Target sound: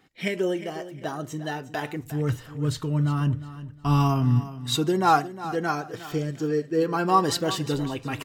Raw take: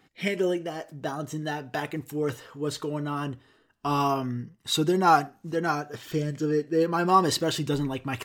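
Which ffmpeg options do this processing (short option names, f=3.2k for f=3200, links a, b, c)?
-filter_complex "[0:a]asplit=3[a][b][c];[a]afade=t=out:st=2.03:d=0.02[d];[b]asubboost=boost=9.5:cutoff=160,afade=t=in:st=2.03:d=0.02,afade=t=out:st=4.39:d=0.02[e];[c]afade=t=in:st=4.39:d=0.02[f];[d][e][f]amix=inputs=3:normalize=0,aecho=1:1:358|716|1074:0.188|0.0452|0.0108"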